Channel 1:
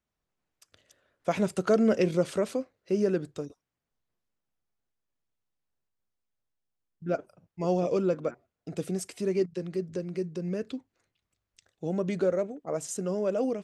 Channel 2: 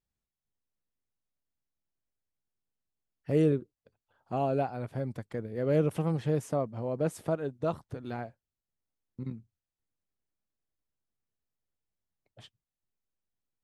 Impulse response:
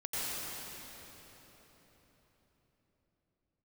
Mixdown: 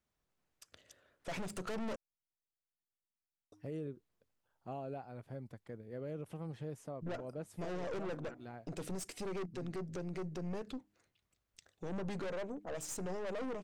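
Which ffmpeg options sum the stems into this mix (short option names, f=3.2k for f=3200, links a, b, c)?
-filter_complex "[0:a]aeval=exprs='(tanh(56.2*val(0)+0.55)-tanh(0.55))/56.2':c=same,bandreject=f=102.6:t=h:w=4,bandreject=f=205.2:t=h:w=4,bandreject=f=307.8:t=h:w=4,volume=2.5dB,asplit=3[a][b][c];[a]atrim=end=1.96,asetpts=PTS-STARTPTS,afade=t=out:st=1.956:d=0.004:c=hsin[d];[b]atrim=start=1.96:end=3.52,asetpts=PTS-STARTPTS,volume=0[e];[c]atrim=start=3.52,asetpts=PTS-STARTPTS,afade=t=in:d=0.004:c=hsin[f];[d][e][f]concat=n=3:v=0:a=1[g];[1:a]adelay=350,volume=-12dB[h];[g][h]amix=inputs=2:normalize=0,alimiter=level_in=10dB:limit=-24dB:level=0:latency=1:release=136,volume=-10dB"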